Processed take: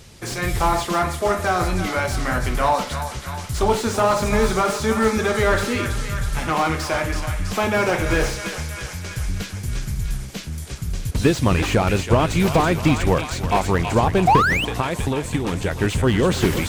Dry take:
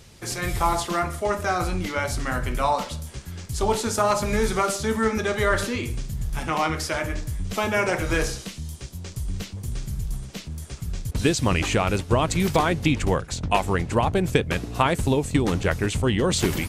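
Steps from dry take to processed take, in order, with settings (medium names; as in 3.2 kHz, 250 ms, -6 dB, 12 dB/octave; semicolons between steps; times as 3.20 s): 14.70–15.80 s: compression, threshold -23 dBFS, peak gain reduction 8.5 dB; thinning echo 325 ms, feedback 76%, high-pass 600 Hz, level -10 dB; 14.27–14.65 s: painted sound rise 700–3200 Hz -14 dBFS; slew-rate limiter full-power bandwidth 130 Hz; trim +4 dB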